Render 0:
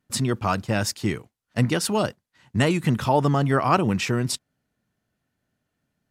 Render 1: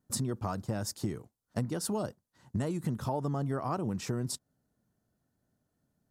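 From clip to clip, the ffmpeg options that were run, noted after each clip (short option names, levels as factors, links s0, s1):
-af "equalizer=f=2500:t=o:w=1.4:g=-14.5,acompressor=threshold=0.0316:ratio=6"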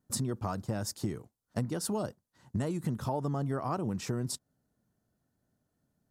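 -af anull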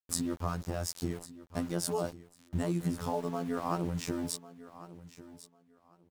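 -af "afftfilt=real='hypot(re,im)*cos(PI*b)':imag='0':win_size=2048:overlap=0.75,aeval=exprs='val(0)*gte(abs(val(0)),0.00355)':c=same,aecho=1:1:1098|2196:0.15|0.0299,volume=1.58"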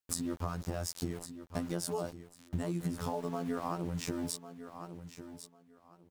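-af "acompressor=threshold=0.02:ratio=6,volume=1.41"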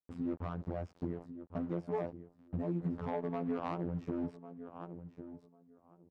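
-af "asoftclip=type=hard:threshold=0.0447,adynamicsmooth=sensitivity=2:basefreq=690,lowshelf=f=94:g=-9.5,volume=1.26"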